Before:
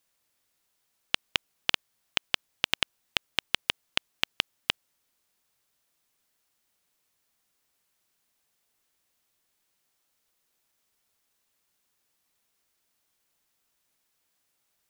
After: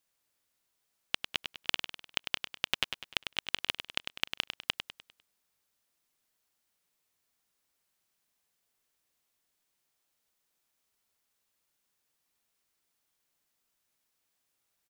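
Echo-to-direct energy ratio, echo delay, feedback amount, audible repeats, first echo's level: -7.0 dB, 100 ms, 42%, 4, -8.0 dB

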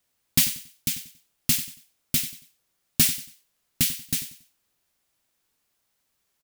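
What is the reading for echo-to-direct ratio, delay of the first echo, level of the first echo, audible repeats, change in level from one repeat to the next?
-14.0 dB, 93 ms, -14.5 dB, 3, -10.0 dB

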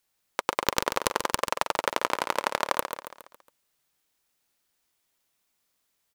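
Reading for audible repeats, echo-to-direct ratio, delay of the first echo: 5, -7.0 dB, 138 ms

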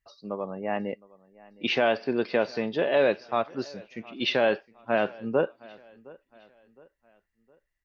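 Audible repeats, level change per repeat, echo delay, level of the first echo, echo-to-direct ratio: 2, -7.5 dB, 713 ms, -23.0 dB, -22.0 dB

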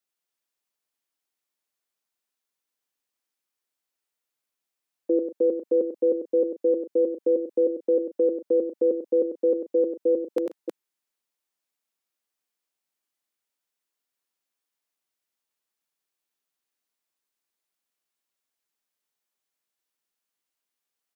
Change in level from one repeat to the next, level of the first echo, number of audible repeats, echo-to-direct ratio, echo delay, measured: no regular repeats, -7.0 dB, 3, -3.5 dB, 96 ms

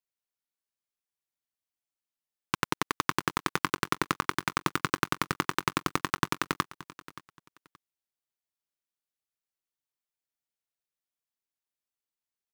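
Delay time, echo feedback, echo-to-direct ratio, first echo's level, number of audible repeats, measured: 575 ms, 24%, -18.0 dB, -18.0 dB, 2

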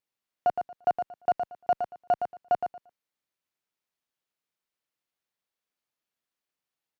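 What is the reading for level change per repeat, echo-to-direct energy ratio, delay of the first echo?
-14.5 dB, -7.0 dB, 115 ms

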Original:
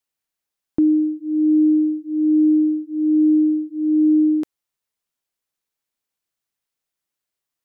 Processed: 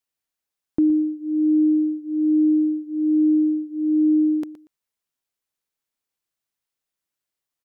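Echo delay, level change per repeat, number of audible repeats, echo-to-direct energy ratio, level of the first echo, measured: 118 ms, -13.5 dB, 2, -15.0 dB, -15.0 dB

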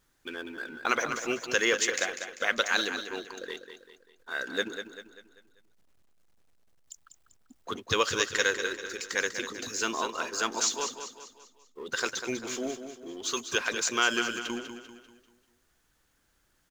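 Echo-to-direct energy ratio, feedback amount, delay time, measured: -8.0 dB, 44%, 196 ms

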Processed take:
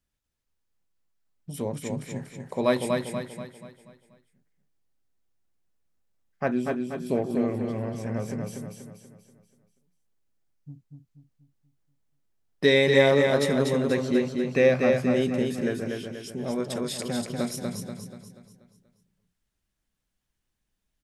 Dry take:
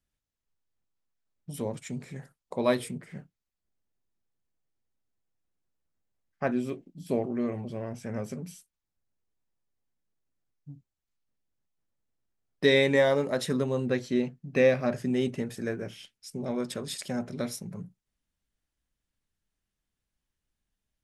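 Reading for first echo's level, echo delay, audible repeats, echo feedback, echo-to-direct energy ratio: -4.0 dB, 241 ms, 5, 45%, -3.0 dB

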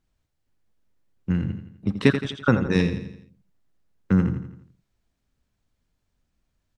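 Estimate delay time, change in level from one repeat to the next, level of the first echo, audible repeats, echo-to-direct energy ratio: 84 ms, -6.5 dB, -10.0 dB, 4, -9.0 dB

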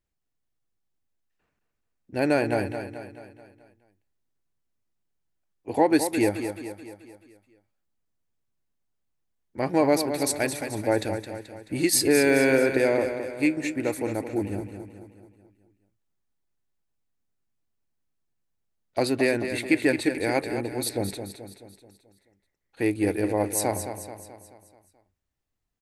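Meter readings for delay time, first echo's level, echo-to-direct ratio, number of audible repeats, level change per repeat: 216 ms, -9.0 dB, -7.5 dB, 5, -6.0 dB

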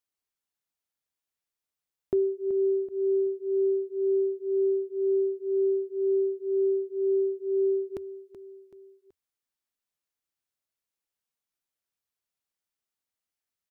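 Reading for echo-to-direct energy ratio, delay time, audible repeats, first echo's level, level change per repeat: -12.0 dB, 379 ms, 3, -13.0 dB, -7.0 dB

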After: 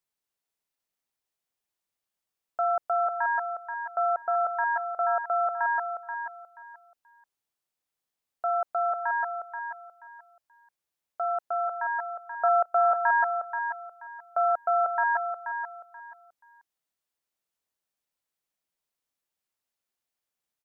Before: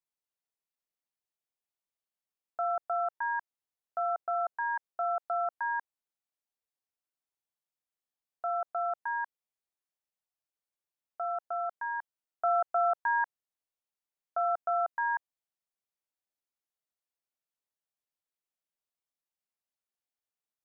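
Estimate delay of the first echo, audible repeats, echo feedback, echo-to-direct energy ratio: 481 ms, 3, 24%, -7.0 dB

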